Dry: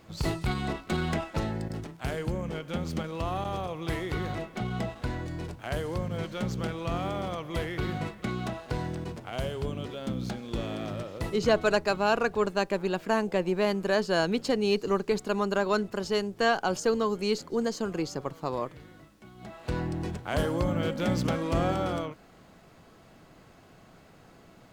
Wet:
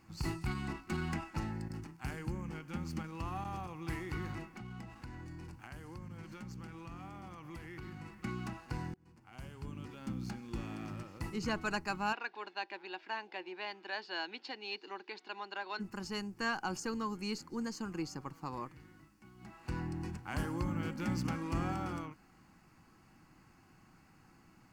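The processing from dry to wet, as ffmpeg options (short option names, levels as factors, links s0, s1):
-filter_complex "[0:a]asettb=1/sr,asplit=3[s0][s1][s2];[s0]atrim=end=4.454[s3];[s1]atrim=start=4.45:end=8.13,asetpts=PTS-STARTPTS,afade=t=in:d=0.004:c=qsin,afade=t=out:st=3.676:d=0.004:c=qsin,acompressor=threshold=0.0158:ratio=4:attack=3.2:release=140:knee=1:detection=peak[s4];[s2]atrim=start=8.126[s5];[s3][s4]acrossfade=d=0.004:c1=hsin:c2=qsin[s6];[s6][s5]acrossfade=d=0.004:c1=qsin:c2=hsin,asplit=3[s7][s8][s9];[s7]afade=t=out:st=12.12:d=0.02[s10];[s8]highpass=f=400:w=0.5412,highpass=f=400:w=1.3066,equalizer=f=480:t=q:w=4:g=-8,equalizer=f=1200:t=q:w=4:g=-10,equalizer=f=3600:t=q:w=4:g=10,lowpass=f=4300:w=0.5412,lowpass=f=4300:w=1.3066,afade=t=in:st=12.12:d=0.02,afade=t=out:st=15.79:d=0.02[s11];[s9]afade=t=in:st=15.79:d=0.02[s12];[s10][s11][s12]amix=inputs=3:normalize=0,asplit=2[s13][s14];[s13]atrim=end=8.94,asetpts=PTS-STARTPTS,afade=t=out:st=8.936:d=0.004:c=hsin[s15];[s14]atrim=start=8.94,asetpts=PTS-STARTPTS,afade=t=in:d=1.07[s16];[s15][s16]concat=n=2:v=0:a=1,superequalizer=7b=0.316:8b=0.251:13b=0.355,volume=0.447"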